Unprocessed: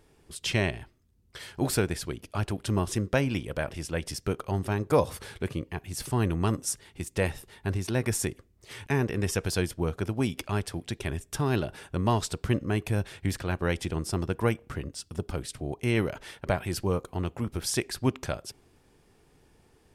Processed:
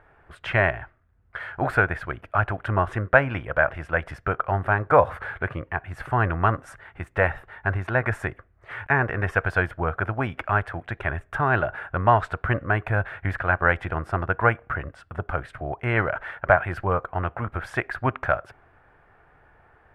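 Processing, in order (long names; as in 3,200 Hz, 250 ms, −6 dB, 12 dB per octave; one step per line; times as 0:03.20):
drawn EQ curve 110 Hz 0 dB, 210 Hz −8 dB, 420 Hz −4 dB, 670 Hz +9 dB, 960 Hz +6 dB, 1,500 Hz +14 dB, 5,300 Hz −25 dB
level +3.5 dB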